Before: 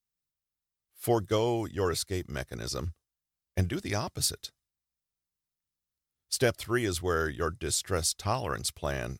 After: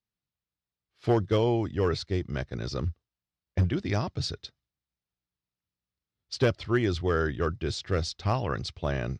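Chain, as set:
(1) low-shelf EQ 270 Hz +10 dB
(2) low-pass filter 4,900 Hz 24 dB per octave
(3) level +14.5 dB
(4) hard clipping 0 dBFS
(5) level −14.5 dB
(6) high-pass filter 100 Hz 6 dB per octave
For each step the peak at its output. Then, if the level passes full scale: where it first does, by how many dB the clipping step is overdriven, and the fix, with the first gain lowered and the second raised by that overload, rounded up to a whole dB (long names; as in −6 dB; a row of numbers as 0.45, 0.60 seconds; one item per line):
−6.5, −6.5, +8.0, 0.0, −14.5, −12.0 dBFS
step 3, 8.0 dB
step 3 +6.5 dB, step 5 −6.5 dB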